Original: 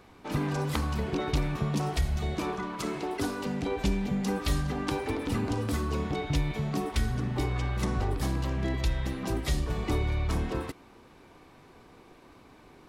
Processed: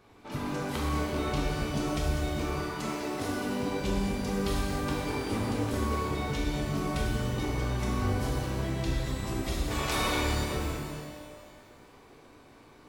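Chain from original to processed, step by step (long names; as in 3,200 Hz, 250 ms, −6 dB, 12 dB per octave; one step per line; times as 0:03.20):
0:09.70–0:10.17: ceiling on every frequency bin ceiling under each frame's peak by 27 dB
reverb with rising layers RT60 1.8 s, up +12 semitones, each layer −8 dB, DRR −4 dB
level −6.5 dB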